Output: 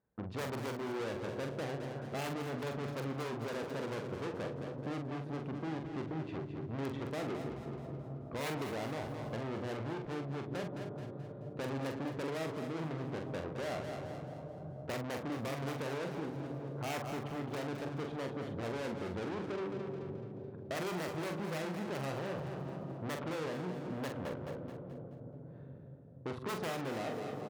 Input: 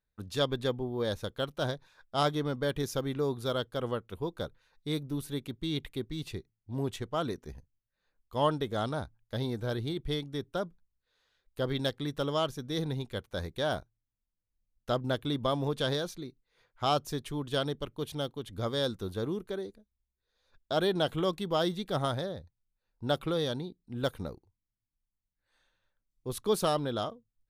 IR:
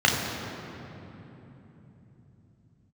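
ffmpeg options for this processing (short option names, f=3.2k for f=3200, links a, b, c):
-filter_complex "[0:a]lowpass=1k,asplit=2[a][b];[1:a]atrim=start_sample=2205,asetrate=25578,aresample=44100[c];[b][c]afir=irnorm=-1:irlink=0,volume=-40dB[d];[a][d]amix=inputs=2:normalize=0,aeval=exprs='(mod(11.2*val(0)+1,2)-1)/11.2':c=same,aeval=exprs='(tanh(224*val(0)+0.65)-tanh(0.65))/224':c=same,aecho=1:1:215|430|645|860|1075:0.355|0.156|0.0687|0.0302|0.0133,acompressor=threshold=-48dB:ratio=6,highpass=130,asplit=2[e][f];[f]adelay=44,volume=-6dB[g];[e][g]amix=inputs=2:normalize=0,volume=14dB"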